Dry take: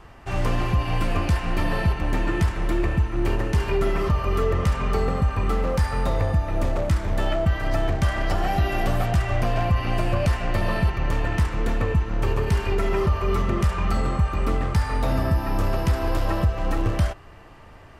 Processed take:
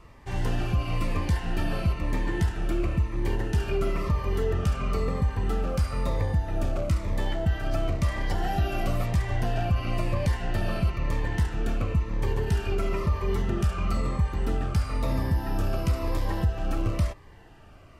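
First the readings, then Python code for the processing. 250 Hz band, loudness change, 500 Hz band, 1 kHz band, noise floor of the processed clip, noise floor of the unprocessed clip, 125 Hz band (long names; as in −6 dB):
−4.0 dB, −4.0 dB, −5.5 dB, −7.0 dB, −49 dBFS, −45 dBFS, −3.5 dB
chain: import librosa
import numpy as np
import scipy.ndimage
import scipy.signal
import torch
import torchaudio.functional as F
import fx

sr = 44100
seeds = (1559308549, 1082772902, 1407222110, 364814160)

y = fx.notch_cascade(x, sr, direction='falling', hz=1.0)
y = F.gain(torch.from_numpy(y), -3.5).numpy()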